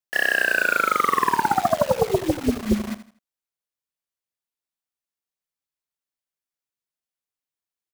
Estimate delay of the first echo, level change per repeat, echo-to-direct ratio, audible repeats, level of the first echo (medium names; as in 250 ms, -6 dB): 81 ms, -10.0 dB, -13.0 dB, 3, -13.5 dB